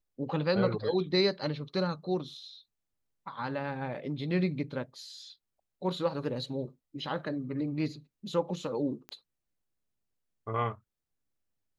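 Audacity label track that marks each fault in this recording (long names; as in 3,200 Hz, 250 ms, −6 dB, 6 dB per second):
9.090000	9.090000	click −26 dBFS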